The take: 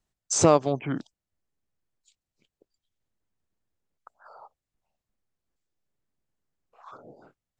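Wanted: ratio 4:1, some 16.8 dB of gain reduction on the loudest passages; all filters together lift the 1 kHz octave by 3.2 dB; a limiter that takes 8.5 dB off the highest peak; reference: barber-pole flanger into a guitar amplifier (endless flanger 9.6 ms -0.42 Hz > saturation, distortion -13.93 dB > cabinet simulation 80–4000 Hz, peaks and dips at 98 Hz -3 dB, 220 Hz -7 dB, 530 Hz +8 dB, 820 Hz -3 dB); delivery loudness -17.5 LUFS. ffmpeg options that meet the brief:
-filter_complex "[0:a]equalizer=f=1000:t=o:g=5,acompressor=threshold=0.0282:ratio=4,alimiter=level_in=1.12:limit=0.0631:level=0:latency=1,volume=0.891,asplit=2[s0][s1];[s1]adelay=9.6,afreqshift=-0.42[s2];[s0][s2]amix=inputs=2:normalize=1,asoftclip=threshold=0.02,highpass=80,equalizer=f=98:t=q:w=4:g=-3,equalizer=f=220:t=q:w=4:g=-7,equalizer=f=530:t=q:w=4:g=8,equalizer=f=820:t=q:w=4:g=-3,lowpass=f=4000:w=0.5412,lowpass=f=4000:w=1.3066,volume=26.6"

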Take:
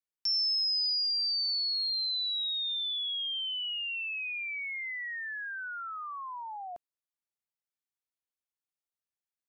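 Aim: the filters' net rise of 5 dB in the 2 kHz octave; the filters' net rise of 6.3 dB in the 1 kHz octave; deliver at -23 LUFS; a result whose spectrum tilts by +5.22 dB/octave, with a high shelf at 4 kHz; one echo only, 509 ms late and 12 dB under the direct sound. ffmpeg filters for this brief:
-af "equalizer=f=1000:t=o:g=6.5,equalizer=f=2000:t=o:g=6.5,highshelf=f=4000:g=-7.5,aecho=1:1:509:0.251,volume=2.37"

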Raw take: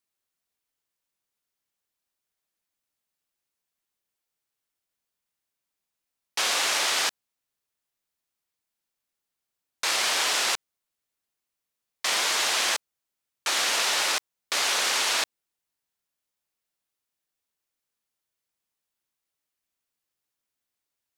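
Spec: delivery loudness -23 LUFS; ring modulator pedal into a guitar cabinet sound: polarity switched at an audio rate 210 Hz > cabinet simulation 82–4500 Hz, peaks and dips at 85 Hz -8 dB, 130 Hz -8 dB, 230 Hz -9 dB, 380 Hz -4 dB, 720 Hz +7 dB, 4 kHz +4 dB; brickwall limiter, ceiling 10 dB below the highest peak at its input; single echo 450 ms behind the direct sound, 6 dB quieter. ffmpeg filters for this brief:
-af "alimiter=limit=0.0841:level=0:latency=1,aecho=1:1:450:0.501,aeval=exprs='val(0)*sgn(sin(2*PI*210*n/s))':c=same,highpass=82,equalizer=f=85:t=q:w=4:g=-8,equalizer=f=130:t=q:w=4:g=-8,equalizer=f=230:t=q:w=4:g=-9,equalizer=f=380:t=q:w=4:g=-4,equalizer=f=720:t=q:w=4:g=7,equalizer=f=4000:t=q:w=4:g=4,lowpass=f=4500:w=0.5412,lowpass=f=4500:w=1.3066,volume=2.51"

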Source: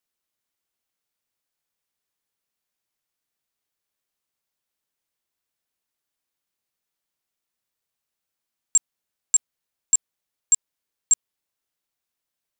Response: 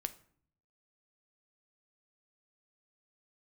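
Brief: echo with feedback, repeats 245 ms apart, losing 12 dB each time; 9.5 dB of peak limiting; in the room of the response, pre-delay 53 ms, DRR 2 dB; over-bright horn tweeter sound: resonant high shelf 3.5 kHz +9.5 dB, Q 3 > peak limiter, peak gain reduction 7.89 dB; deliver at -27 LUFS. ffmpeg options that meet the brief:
-filter_complex "[0:a]alimiter=limit=0.1:level=0:latency=1,aecho=1:1:245|490|735:0.251|0.0628|0.0157,asplit=2[s0][s1];[1:a]atrim=start_sample=2205,adelay=53[s2];[s1][s2]afir=irnorm=-1:irlink=0,volume=0.891[s3];[s0][s3]amix=inputs=2:normalize=0,highshelf=f=3500:t=q:w=3:g=9.5,volume=0.708,alimiter=limit=0.141:level=0:latency=1"

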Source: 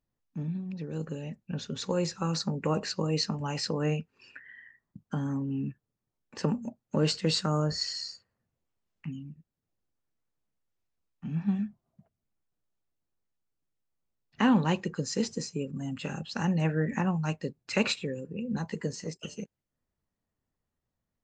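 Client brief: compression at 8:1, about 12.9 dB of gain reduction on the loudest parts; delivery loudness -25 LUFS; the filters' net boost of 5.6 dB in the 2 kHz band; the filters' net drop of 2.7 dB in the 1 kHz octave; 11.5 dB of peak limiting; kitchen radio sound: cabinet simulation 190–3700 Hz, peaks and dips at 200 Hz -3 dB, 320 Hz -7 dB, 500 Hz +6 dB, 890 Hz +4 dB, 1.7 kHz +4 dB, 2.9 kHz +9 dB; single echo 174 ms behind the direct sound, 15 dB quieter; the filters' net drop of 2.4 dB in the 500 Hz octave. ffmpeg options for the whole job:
-af "equalizer=f=500:t=o:g=-5,equalizer=f=1000:t=o:g=-6,equalizer=f=2000:t=o:g=3.5,acompressor=threshold=0.02:ratio=8,alimiter=level_in=2.82:limit=0.0631:level=0:latency=1,volume=0.355,highpass=190,equalizer=f=200:t=q:w=4:g=-3,equalizer=f=320:t=q:w=4:g=-7,equalizer=f=500:t=q:w=4:g=6,equalizer=f=890:t=q:w=4:g=4,equalizer=f=1700:t=q:w=4:g=4,equalizer=f=2900:t=q:w=4:g=9,lowpass=f=3700:w=0.5412,lowpass=f=3700:w=1.3066,aecho=1:1:174:0.178,volume=9.44"

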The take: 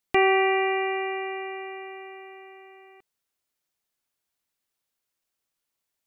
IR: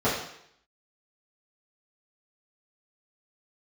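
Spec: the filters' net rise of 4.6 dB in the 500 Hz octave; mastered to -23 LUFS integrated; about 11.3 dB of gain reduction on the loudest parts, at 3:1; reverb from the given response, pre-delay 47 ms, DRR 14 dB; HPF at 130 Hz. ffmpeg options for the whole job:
-filter_complex "[0:a]highpass=130,equalizer=f=500:t=o:g=7.5,acompressor=threshold=0.0355:ratio=3,asplit=2[s0][s1];[1:a]atrim=start_sample=2205,adelay=47[s2];[s1][s2]afir=irnorm=-1:irlink=0,volume=0.0335[s3];[s0][s3]amix=inputs=2:normalize=0,volume=2.51"

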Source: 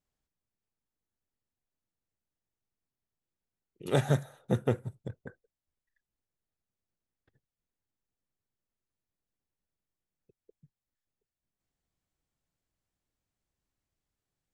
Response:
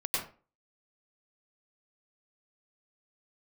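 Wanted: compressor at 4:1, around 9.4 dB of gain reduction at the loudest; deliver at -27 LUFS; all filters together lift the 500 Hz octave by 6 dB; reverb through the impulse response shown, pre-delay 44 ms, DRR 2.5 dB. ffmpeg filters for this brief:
-filter_complex "[0:a]equalizer=f=500:t=o:g=7,acompressor=threshold=0.0355:ratio=4,asplit=2[s0][s1];[1:a]atrim=start_sample=2205,adelay=44[s2];[s1][s2]afir=irnorm=-1:irlink=0,volume=0.376[s3];[s0][s3]amix=inputs=2:normalize=0,volume=2.51"

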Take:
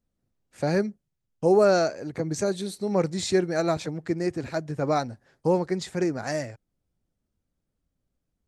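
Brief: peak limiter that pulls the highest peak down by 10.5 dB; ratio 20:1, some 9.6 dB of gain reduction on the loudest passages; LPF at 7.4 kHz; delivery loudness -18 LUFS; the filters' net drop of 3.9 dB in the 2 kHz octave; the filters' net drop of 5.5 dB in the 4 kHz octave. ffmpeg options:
-af "lowpass=7400,equalizer=f=2000:t=o:g=-4.5,equalizer=f=4000:t=o:g=-5,acompressor=threshold=0.0631:ratio=20,volume=7.94,alimiter=limit=0.398:level=0:latency=1"

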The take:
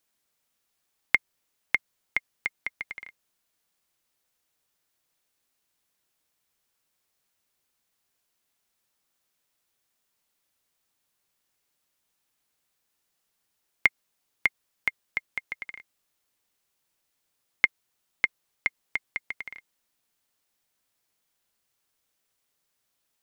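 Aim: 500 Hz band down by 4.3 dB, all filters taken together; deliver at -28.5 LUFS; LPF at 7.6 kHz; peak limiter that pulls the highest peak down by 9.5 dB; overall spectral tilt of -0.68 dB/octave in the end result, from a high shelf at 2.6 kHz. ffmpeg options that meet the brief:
-af "lowpass=7600,equalizer=f=500:t=o:g=-6,highshelf=f=2600:g=7.5,volume=1.58,alimiter=limit=0.473:level=0:latency=1"

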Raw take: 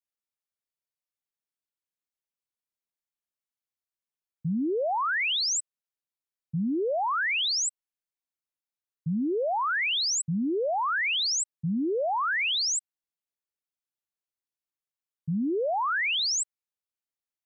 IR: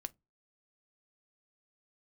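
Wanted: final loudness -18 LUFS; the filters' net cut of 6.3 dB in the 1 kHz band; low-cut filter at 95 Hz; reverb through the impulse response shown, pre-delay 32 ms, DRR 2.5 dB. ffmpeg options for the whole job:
-filter_complex "[0:a]highpass=95,equalizer=f=1000:t=o:g=-8.5,asplit=2[s0][s1];[1:a]atrim=start_sample=2205,adelay=32[s2];[s1][s2]afir=irnorm=-1:irlink=0,volume=1.06[s3];[s0][s3]amix=inputs=2:normalize=0,volume=2.37"

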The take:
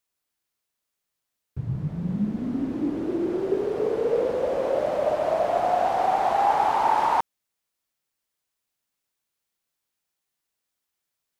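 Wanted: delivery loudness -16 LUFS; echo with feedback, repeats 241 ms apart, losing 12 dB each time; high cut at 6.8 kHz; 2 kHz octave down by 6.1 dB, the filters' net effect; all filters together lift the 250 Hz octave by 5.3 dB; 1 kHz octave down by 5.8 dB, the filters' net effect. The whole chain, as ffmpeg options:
-af "lowpass=6800,equalizer=f=250:t=o:g=7.5,equalizer=f=1000:t=o:g=-8,equalizer=f=2000:t=o:g=-5,aecho=1:1:241|482|723:0.251|0.0628|0.0157,volume=2.66"

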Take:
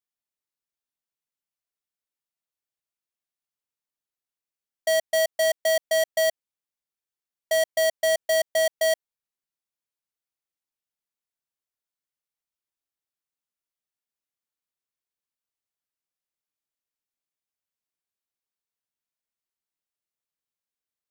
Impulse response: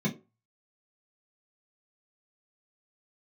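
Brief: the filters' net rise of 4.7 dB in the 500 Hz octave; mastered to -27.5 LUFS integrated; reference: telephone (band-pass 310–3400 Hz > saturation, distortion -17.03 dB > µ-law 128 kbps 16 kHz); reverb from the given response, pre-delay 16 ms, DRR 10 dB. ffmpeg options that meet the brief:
-filter_complex "[0:a]equalizer=f=500:t=o:g=7.5,asplit=2[s0][s1];[1:a]atrim=start_sample=2205,adelay=16[s2];[s1][s2]afir=irnorm=-1:irlink=0,volume=0.15[s3];[s0][s3]amix=inputs=2:normalize=0,highpass=310,lowpass=3400,asoftclip=threshold=0.141,volume=0.596" -ar 16000 -c:a pcm_mulaw

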